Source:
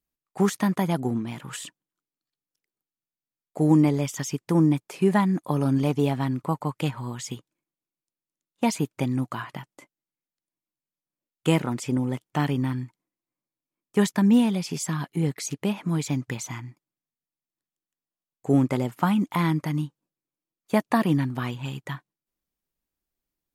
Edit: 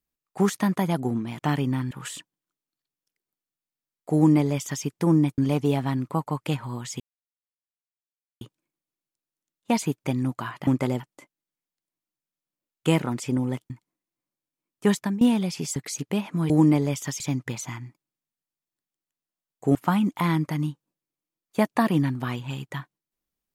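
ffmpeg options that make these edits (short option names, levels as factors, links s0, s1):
-filter_complex "[0:a]asplit=13[s0][s1][s2][s3][s4][s5][s6][s7][s8][s9][s10][s11][s12];[s0]atrim=end=1.392[s13];[s1]atrim=start=12.298:end=12.822[s14];[s2]atrim=start=1.388:end=4.862[s15];[s3]atrim=start=5.718:end=7.34,asetpts=PTS-STARTPTS,afade=t=out:st=1.618:d=0.004:c=hsin,apad=pad_dur=1.41[s16];[s4]atrim=start=7.34:end=9.602,asetpts=PTS-STARTPTS,afade=t=in:d=0.004:c=hsin[s17];[s5]atrim=start=18.568:end=18.902[s18];[s6]atrim=start=9.598:end=12.302[s19];[s7]atrim=start=12.818:end=14.33,asetpts=PTS-STARTPTS,afade=t=out:st=1.162:d=0.35:c=qsin:silence=0.0794328[s20];[s8]atrim=start=14.33:end=14.882,asetpts=PTS-STARTPTS,afade=t=in:d=0.004:c=hsin:silence=0.0794328[s21];[s9]atrim=start=15.278:end=16.022[s22];[s10]atrim=start=3.618:end=4.322[s23];[s11]atrim=start=16.018:end=18.572[s24];[s12]atrim=start=18.898[s25];[s13][s14]acrossfade=d=0.004:c1=hsin:c2=hsin[s26];[s26][s15]acrossfade=d=0.004:c1=hsin:c2=hsin[s27];[s16][s17]concat=n=2:v=0:a=1[s28];[s27][s28]acrossfade=d=0.004:c1=hsin:c2=hsin[s29];[s29][s18]acrossfade=d=0.004:c1=hsin:c2=hsin[s30];[s30][s19]acrossfade=d=0.004:c1=hsin:c2=hsin[s31];[s20][s21]concat=n=2:v=0:a=1[s32];[s31][s32]acrossfade=d=0.004:c1=hsin:c2=hsin[s33];[s33][s22]acrossfade=d=0.004:c1=hsin:c2=hsin[s34];[s34][s23]acrossfade=d=0.004:c1=hsin:c2=hsin[s35];[s35][s24]acrossfade=d=0.004:c1=hsin:c2=hsin[s36];[s36][s25]acrossfade=d=0.004:c1=hsin:c2=hsin"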